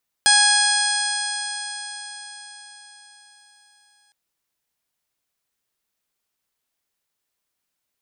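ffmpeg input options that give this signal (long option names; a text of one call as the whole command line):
ffmpeg -f lavfi -i "aevalsrc='0.0891*pow(10,-3*t/4.85)*sin(2*PI*827.33*t)+0.133*pow(10,-3*t/4.85)*sin(2*PI*1656.64*t)+0.0316*pow(10,-3*t/4.85)*sin(2*PI*2489.92*t)+0.1*pow(10,-3*t/4.85)*sin(2*PI*3329.1*t)+0.0841*pow(10,-3*t/4.85)*sin(2*PI*4176.15*t)+0.119*pow(10,-3*t/4.85)*sin(2*PI*5032.95*t)+0.0447*pow(10,-3*t/4.85)*sin(2*PI*5901.37*t)+0.0398*pow(10,-3*t/4.85)*sin(2*PI*6783.26*t)+0.0168*pow(10,-3*t/4.85)*sin(2*PI*7680.37*t)+0.158*pow(10,-3*t/4.85)*sin(2*PI*8594.44*t)':duration=3.86:sample_rate=44100" out.wav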